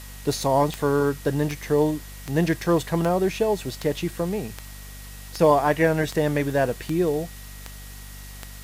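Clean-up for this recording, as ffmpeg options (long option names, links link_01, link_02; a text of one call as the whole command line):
ffmpeg -i in.wav -af "adeclick=threshold=4,bandreject=frequency=49.1:width_type=h:width=4,bandreject=frequency=98.2:width_type=h:width=4,bandreject=frequency=147.3:width_type=h:width=4,bandreject=frequency=196.4:width_type=h:width=4,bandreject=frequency=245.5:width_type=h:width=4,bandreject=frequency=1900:width=30,afwtdn=0.0063" out.wav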